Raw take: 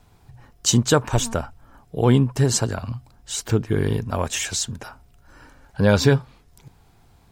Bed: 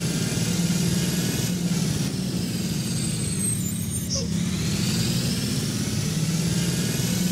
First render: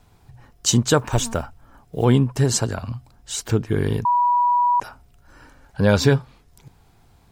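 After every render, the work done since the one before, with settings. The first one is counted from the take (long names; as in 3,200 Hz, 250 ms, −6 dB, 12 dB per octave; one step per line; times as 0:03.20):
0:00.98–0:02.05: one scale factor per block 7 bits
0:04.05–0:04.80: beep over 973 Hz −14.5 dBFS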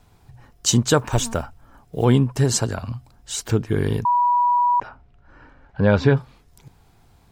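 0:04.58–0:06.17: low-pass filter 2,600 Hz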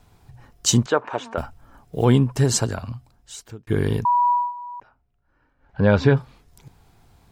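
0:00.86–0:01.38: band-pass filter 410–2,100 Hz
0:02.64–0:03.67: fade out
0:04.31–0:05.80: duck −17 dB, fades 0.22 s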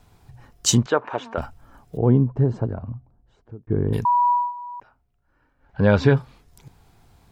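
0:00.75–0:01.42: high-frequency loss of the air 98 metres
0:01.97–0:03.93: Bessel low-pass filter 600 Hz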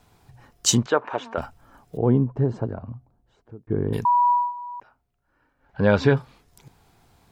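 low-shelf EQ 120 Hz −8 dB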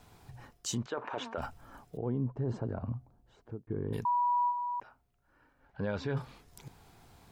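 reversed playback
downward compressor 12 to 1, threshold −27 dBFS, peak gain reduction 15.5 dB
reversed playback
brickwall limiter −25 dBFS, peak gain reduction 9 dB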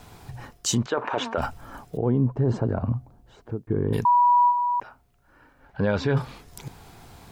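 level +11 dB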